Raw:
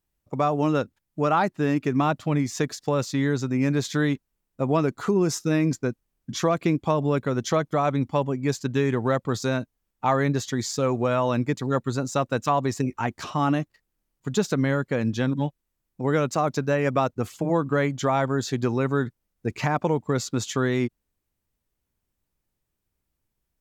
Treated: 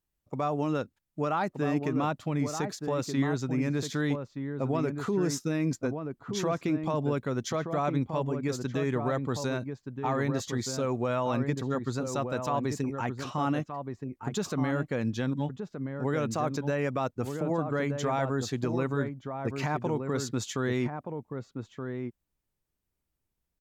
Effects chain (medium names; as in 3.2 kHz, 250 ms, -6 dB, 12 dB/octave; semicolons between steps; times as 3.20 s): peak limiter -15 dBFS, peak gain reduction 5 dB; echo from a far wall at 210 m, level -6 dB; trim -5 dB